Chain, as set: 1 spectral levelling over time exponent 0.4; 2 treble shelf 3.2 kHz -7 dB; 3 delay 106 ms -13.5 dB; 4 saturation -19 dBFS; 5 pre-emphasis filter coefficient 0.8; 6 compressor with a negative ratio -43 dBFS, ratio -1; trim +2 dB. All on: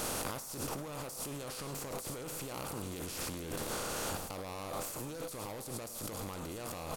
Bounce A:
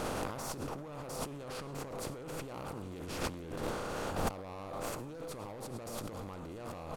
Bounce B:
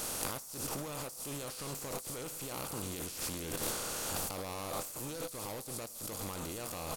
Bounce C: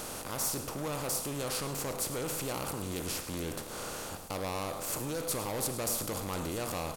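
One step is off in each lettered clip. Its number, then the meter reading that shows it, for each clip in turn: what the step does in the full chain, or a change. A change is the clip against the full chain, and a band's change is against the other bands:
5, 8 kHz band -7.5 dB; 2, 8 kHz band +3.0 dB; 6, loudness change +5.5 LU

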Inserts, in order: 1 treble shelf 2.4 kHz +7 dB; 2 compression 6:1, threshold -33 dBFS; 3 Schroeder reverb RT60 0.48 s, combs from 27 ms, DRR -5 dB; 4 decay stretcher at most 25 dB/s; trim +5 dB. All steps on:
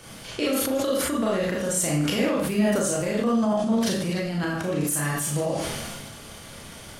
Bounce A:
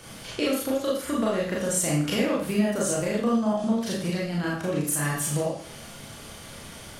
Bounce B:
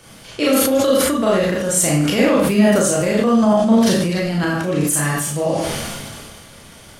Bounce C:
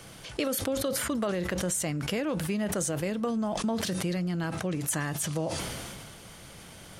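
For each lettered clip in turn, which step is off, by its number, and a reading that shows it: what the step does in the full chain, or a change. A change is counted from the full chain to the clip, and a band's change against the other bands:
4, momentary loudness spread change +2 LU; 2, mean gain reduction 5.0 dB; 3, crest factor change +3.0 dB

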